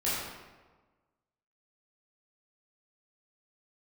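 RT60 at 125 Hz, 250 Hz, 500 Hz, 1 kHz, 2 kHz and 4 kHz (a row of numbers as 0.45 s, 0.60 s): 1.4 s, 1.4 s, 1.3 s, 1.3 s, 1.1 s, 0.85 s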